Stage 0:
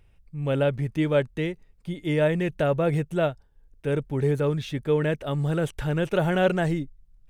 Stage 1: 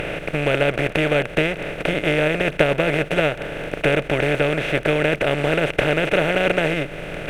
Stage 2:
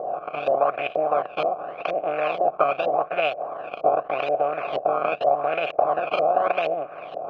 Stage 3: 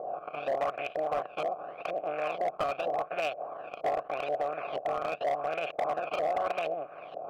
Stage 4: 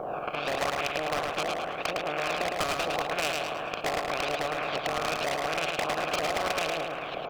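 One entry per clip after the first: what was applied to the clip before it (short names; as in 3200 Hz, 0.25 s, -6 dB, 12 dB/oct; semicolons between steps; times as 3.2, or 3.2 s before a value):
per-bin compression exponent 0.2; bell 2400 Hz +12 dB 0.76 oct; transient shaper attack +6 dB, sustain -4 dB; gain -5 dB
decimation with a swept rate 16×, swing 100% 0.85 Hz; vowel filter a; LFO low-pass saw up 2.1 Hz 530–3900 Hz; gain +5 dB
hard clip -16 dBFS, distortion -14 dB; gain -8 dB
feedback echo 0.108 s, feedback 39%, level -5 dB; spectral compressor 2:1; gain +7 dB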